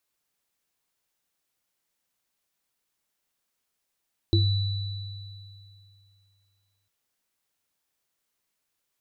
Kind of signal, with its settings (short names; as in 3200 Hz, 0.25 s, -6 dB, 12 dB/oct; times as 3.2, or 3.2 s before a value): sine partials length 2.55 s, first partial 98.8 Hz, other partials 335/3960 Hz, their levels -1/-9 dB, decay 2.57 s, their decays 0.22/2.77 s, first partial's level -17.5 dB